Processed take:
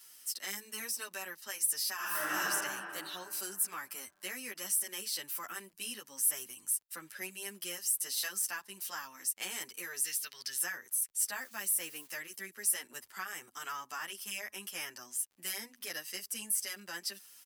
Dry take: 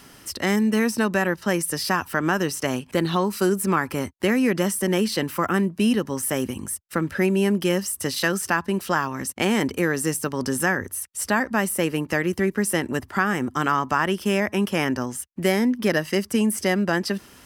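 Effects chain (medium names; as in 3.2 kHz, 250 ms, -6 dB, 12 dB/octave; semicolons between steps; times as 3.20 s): 10.04–10.61 s: graphic EQ 250/500/1000/2000/4000/8000 Hz -11/-5/-8/+6/+10/-7 dB; 11.41–12.15 s: word length cut 8-bit, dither none; differentiator; 1.95–2.40 s: reverb throw, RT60 2.7 s, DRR -11 dB; crackle 32 per s -51 dBFS; endless flanger 9.6 ms -2.7 Hz; trim -1 dB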